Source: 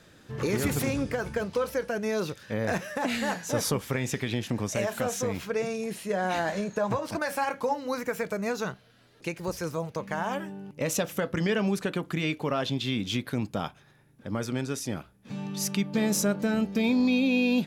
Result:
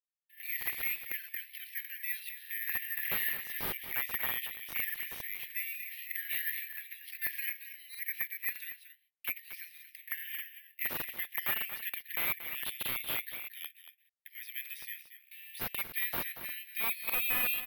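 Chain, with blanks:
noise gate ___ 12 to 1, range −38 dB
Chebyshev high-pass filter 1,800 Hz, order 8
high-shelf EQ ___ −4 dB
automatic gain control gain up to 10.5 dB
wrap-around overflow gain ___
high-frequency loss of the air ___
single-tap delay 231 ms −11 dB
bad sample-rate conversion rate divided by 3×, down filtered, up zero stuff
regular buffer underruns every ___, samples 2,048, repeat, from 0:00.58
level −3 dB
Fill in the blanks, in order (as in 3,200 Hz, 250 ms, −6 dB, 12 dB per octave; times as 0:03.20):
−47 dBFS, 3,800 Hz, 19 dB, 430 metres, 0.61 s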